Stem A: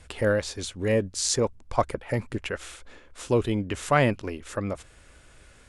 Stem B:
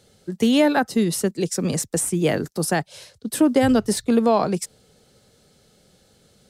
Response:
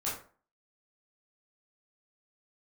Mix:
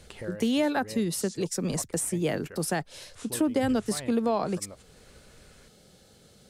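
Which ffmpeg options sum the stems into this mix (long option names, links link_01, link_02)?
-filter_complex "[0:a]acompressor=threshold=-47dB:ratio=1.5,volume=-3dB[link_01];[1:a]volume=0.5dB[link_02];[link_01][link_02]amix=inputs=2:normalize=0,acompressor=threshold=-38dB:ratio=1.5"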